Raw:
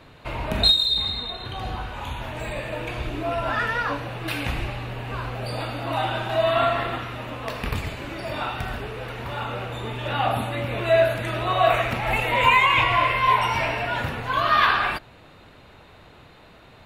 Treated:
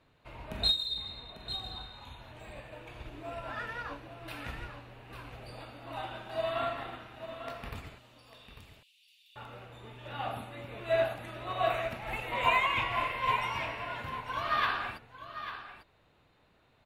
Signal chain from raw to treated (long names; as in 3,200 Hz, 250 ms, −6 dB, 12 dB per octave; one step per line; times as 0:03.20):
0:07.98–0:09.36: Butterworth high-pass 2,800 Hz 48 dB per octave
on a send: single-tap delay 847 ms −7.5 dB
on the sum: expander for the loud parts 1.5 to 1, over −32 dBFS
level −9 dB